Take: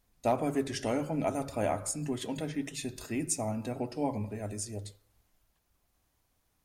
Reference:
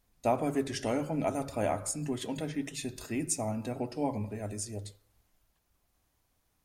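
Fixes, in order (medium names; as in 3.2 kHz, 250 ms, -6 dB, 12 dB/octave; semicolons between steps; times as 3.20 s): clip repair -18.5 dBFS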